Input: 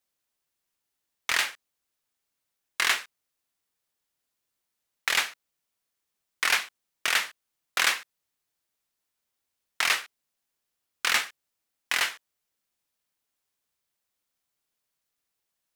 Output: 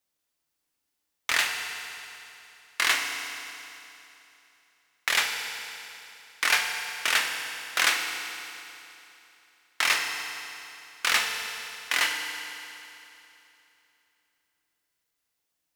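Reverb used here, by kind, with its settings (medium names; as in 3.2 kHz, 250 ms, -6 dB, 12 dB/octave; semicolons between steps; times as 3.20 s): FDN reverb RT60 3 s, high-frequency decay 0.95×, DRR 2.5 dB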